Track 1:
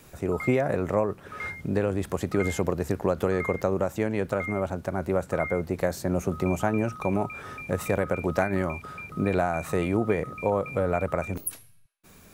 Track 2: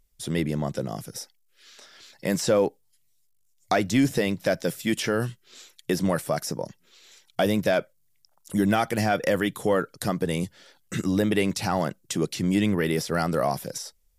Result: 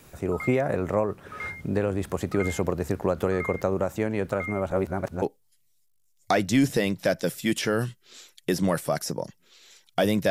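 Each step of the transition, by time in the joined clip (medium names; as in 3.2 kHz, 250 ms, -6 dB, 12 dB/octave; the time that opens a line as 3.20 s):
track 1
4.71–5.22 s: reverse
5.22 s: go over to track 2 from 2.63 s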